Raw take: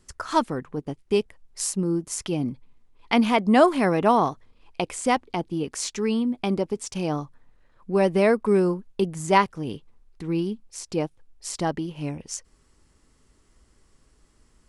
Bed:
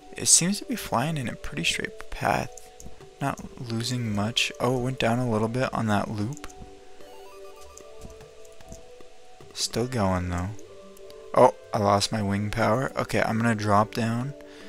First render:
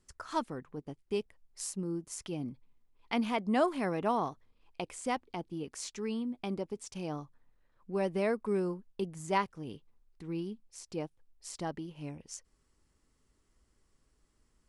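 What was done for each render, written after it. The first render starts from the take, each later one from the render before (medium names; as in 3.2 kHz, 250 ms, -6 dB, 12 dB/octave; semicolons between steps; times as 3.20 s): trim -11.5 dB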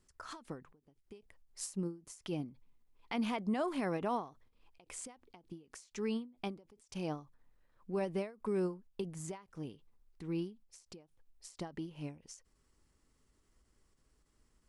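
peak limiter -26.5 dBFS, peak gain reduction 10 dB; endings held to a fixed fall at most 170 dB/s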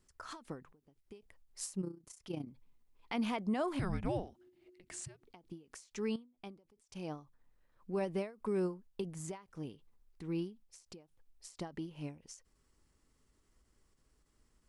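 1.81–2.47 s: AM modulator 30 Hz, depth 55%; 3.79–5.24 s: frequency shift -370 Hz; 6.16–7.90 s: fade in, from -13 dB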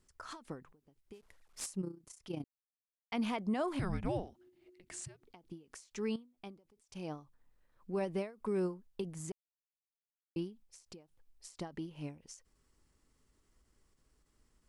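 1.13–1.66 s: CVSD coder 64 kbps; 2.44–3.12 s: mute; 9.32–10.36 s: mute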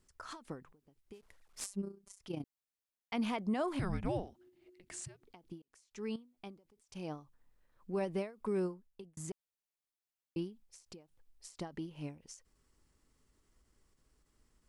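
1.64–2.19 s: robot voice 198 Hz; 5.62–6.31 s: fade in; 8.57–9.17 s: fade out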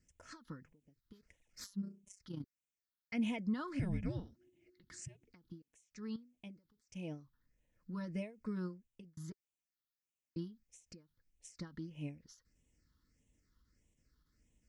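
phase shifter stages 6, 1.6 Hz, lowest notch 640–1300 Hz; comb of notches 390 Hz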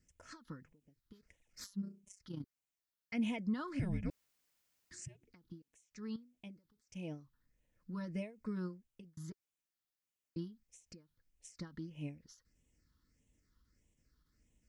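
4.10–4.91 s: room tone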